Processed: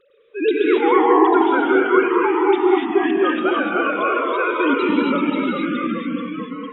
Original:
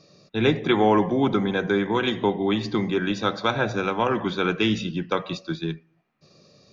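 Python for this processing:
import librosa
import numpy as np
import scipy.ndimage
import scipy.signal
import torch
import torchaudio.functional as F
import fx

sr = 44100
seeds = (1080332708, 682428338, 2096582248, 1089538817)

y = fx.sine_speech(x, sr)
y = fx.hum_notches(y, sr, base_hz=50, count=4)
y = fx.wow_flutter(y, sr, seeds[0], rate_hz=2.1, depth_cents=110.0)
y = fx.echo_pitch(y, sr, ms=99, semitones=-1, count=3, db_per_echo=-3.0)
y = fx.rev_gated(y, sr, seeds[1], gate_ms=310, shape='rising', drr_db=-1.0)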